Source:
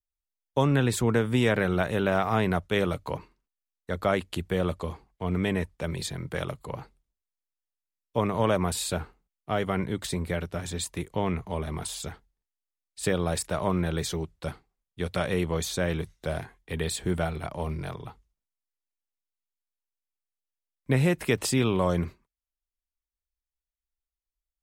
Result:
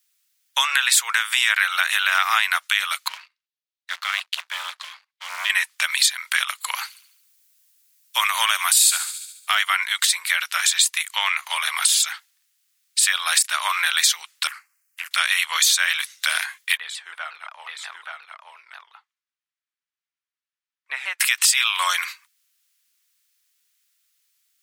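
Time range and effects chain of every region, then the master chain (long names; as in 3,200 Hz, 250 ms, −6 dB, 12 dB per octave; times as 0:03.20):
0:03.08–0:05.50: drawn EQ curve 150 Hz 0 dB, 280 Hz +5 dB, 400 Hz −24 dB, 4,000 Hz −17 dB, 7,800 Hz −29 dB + leveller curve on the samples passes 2
0:06.66–0:09.55: high-shelf EQ 6,000 Hz +9 dB + delay with a high-pass on its return 71 ms, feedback 52%, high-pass 3,200 Hz, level −13.5 dB
0:14.47–0:15.11: downward compressor 4 to 1, threshold −41 dBFS + phaser with its sweep stopped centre 1,500 Hz, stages 4 + highs frequency-modulated by the lows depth 0.72 ms
0:16.77–0:21.20: resonant band-pass 180 Hz, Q 0.69 + single-tap delay 876 ms −4 dB + pitch modulation by a square or saw wave saw down 5.6 Hz, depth 160 cents
whole clip: Bessel high-pass filter 2,100 Hz, order 6; downward compressor 2.5 to 1, threshold −46 dBFS; boost into a limiter +31.5 dB; level −4 dB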